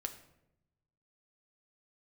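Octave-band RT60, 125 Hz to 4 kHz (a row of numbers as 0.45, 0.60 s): 1.5, 1.2, 0.95, 0.75, 0.65, 0.50 s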